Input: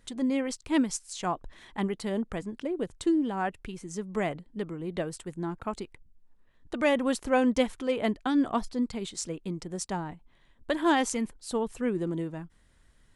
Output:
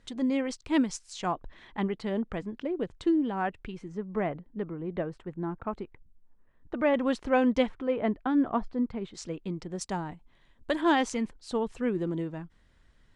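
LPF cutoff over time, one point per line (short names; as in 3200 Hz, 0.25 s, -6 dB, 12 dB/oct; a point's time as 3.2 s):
5900 Hz
from 1.32 s 3700 Hz
from 3.88 s 1800 Hz
from 6.94 s 3900 Hz
from 7.69 s 1800 Hz
from 9.14 s 4300 Hz
from 9.81 s 8700 Hz
from 10.81 s 5300 Hz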